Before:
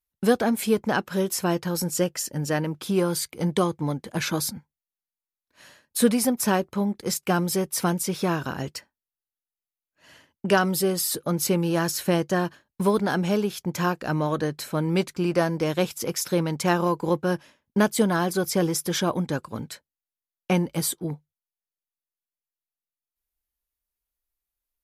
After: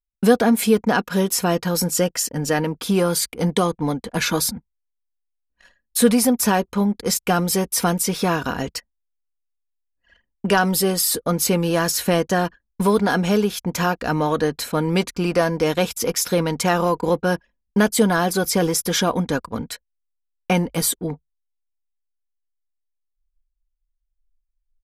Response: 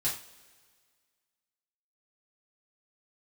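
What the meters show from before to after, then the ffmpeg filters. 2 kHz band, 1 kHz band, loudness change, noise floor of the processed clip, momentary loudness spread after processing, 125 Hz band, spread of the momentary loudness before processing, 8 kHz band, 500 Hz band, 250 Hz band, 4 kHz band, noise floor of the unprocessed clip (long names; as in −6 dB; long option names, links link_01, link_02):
+5.0 dB, +5.0 dB, +4.5 dB, −77 dBFS, 8 LU, +3.0 dB, 8 LU, +6.5 dB, +4.5 dB, +4.0 dB, +6.0 dB, below −85 dBFS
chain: -filter_complex "[0:a]anlmdn=0.0251,asubboost=boost=4.5:cutoff=62,aecho=1:1:4.2:0.39,asplit=2[link_01][link_02];[link_02]alimiter=limit=-17dB:level=0:latency=1:release=33,volume=0.5dB[link_03];[link_01][link_03]amix=inputs=2:normalize=0"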